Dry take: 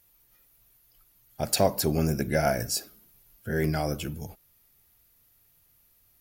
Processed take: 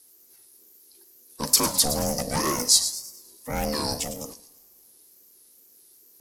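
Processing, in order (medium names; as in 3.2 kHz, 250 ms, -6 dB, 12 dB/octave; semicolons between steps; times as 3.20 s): in parallel at -3 dB: integer overflow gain 14 dB; on the sum: two-slope reverb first 0.84 s, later 3.3 s, from -26 dB, DRR 13.5 dB; overload inside the chain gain 17 dB; high-order bell 7.2 kHz +13 dB; on a send: feedback echo behind a high-pass 108 ms, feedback 40%, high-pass 3.5 kHz, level -10 dB; on the sum: wow and flutter 140 cents; ring modulator 370 Hz; trim -2 dB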